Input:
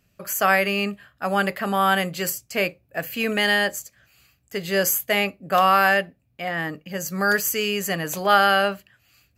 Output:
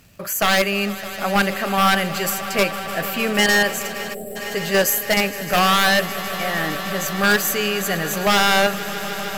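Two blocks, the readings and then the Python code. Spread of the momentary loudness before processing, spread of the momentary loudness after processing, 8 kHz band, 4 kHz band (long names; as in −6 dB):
13 LU, 10 LU, +4.5 dB, +6.0 dB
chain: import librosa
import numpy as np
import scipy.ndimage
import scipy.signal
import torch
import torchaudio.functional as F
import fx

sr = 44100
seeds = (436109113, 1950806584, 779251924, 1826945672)

p1 = fx.law_mismatch(x, sr, coded='mu')
p2 = fx.level_steps(p1, sr, step_db=20)
p3 = p1 + (p2 * 10.0 ** (0.5 / 20.0))
p4 = 10.0 ** (-10.0 / 20.0) * (np.abs((p3 / 10.0 ** (-10.0 / 20.0) + 3.0) % 4.0 - 2.0) - 1.0)
p5 = p4 + fx.echo_swell(p4, sr, ms=153, loudest=5, wet_db=-16.5, dry=0)
p6 = fx.spec_box(p5, sr, start_s=4.14, length_s=0.22, low_hz=780.0, high_hz=7500.0, gain_db=-26)
y = fx.dmg_crackle(p6, sr, seeds[0], per_s=250.0, level_db=-42.0)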